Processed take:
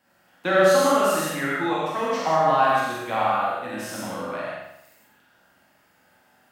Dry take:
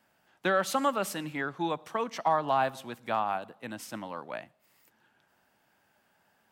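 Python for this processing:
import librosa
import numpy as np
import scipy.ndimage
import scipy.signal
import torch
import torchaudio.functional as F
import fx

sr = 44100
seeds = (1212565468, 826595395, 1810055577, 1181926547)

y = fx.room_flutter(x, sr, wall_m=7.5, rt60_s=0.8)
y = fx.rev_gated(y, sr, seeds[0], gate_ms=200, shape='flat', drr_db=-5.0)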